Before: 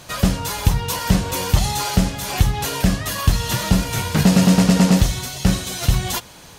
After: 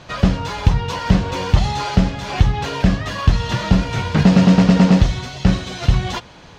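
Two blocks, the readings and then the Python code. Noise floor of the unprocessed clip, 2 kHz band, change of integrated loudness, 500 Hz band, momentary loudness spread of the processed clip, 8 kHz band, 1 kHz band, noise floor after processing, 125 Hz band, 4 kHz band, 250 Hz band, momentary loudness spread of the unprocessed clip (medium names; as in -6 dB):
-42 dBFS, +1.0 dB, +1.5 dB, +2.0 dB, 8 LU, -11.0 dB, +1.5 dB, -42 dBFS, +2.5 dB, -2.5 dB, +2.5 dB, 7 LU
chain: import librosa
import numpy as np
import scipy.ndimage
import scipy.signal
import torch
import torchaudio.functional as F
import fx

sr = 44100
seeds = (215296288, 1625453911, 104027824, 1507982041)

y = fx.air_absorb(x, sr, metres=170.0)
y = y * librosa.db_to_amplitude(2.5)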